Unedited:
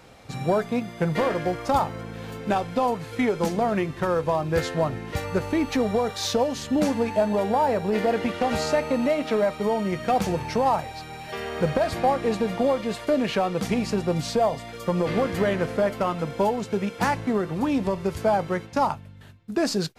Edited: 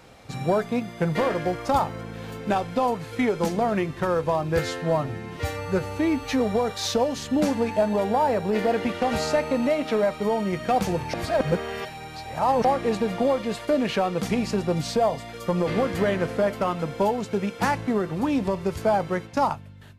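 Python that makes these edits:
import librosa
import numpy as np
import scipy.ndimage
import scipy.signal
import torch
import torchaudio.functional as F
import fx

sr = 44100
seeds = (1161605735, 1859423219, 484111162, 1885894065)

y = fx.edit(x, sr, fx.stretch_span(start_s=4.59, length_s=1.21, factor=1.5),
    fx.reverse_span(start_s=10.53, length_s=1.51), tone=tone)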